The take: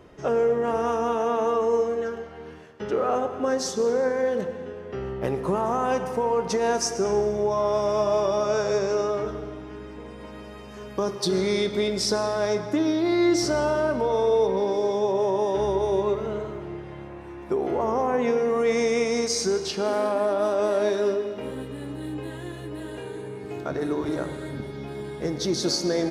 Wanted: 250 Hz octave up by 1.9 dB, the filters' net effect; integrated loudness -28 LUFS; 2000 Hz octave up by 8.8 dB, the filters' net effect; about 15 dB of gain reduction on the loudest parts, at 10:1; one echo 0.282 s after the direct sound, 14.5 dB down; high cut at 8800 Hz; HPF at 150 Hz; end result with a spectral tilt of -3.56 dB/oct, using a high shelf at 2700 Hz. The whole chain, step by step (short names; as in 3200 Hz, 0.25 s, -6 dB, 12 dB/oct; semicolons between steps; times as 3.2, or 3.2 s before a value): HPF 150 Hz; LPF 8800 Hz; bell 250 Hz +3 dB; bell 2000 Hz +7.5 dB; high shelf 2700 Hz +8.5 dB; compressor 10:1, threshold -31 dBFS; echo 0.282 s -14.5 dB; gain +6.5 dB